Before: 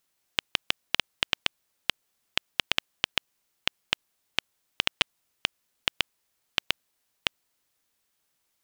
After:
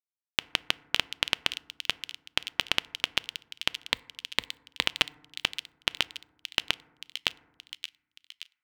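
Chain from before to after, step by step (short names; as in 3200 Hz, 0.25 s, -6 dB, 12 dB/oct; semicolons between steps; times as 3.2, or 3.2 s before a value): 3.8–4.87 ripple EQ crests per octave 1, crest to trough 8 dB; bit-crush 10-bit; on a send: thin delay 0.574 s, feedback 54%, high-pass 3000 Hz, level -7.5 dB; on the sum: FDN reverb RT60 1.1 s, low-frequency decay 1.55×, high-frequency decay 0.3×, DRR 19 dB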